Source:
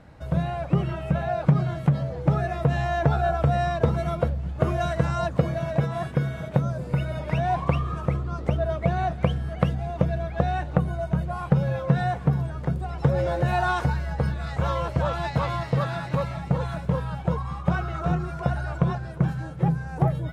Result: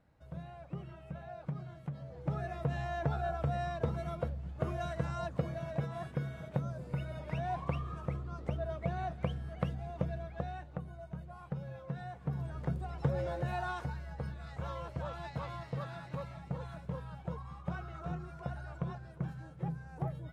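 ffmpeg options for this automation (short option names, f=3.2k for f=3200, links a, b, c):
-af "volume=-1.5dB,afade=t=in:st=1.95:d=0.52:silence=0.398107,afade=t=out:st=10.1:d=0.6:silence=0.446684,afade=t=in:st=12.18:d=0.41:silence=0.298538,afade=t=out:st=12.59:d=1.26:silence=0.473151"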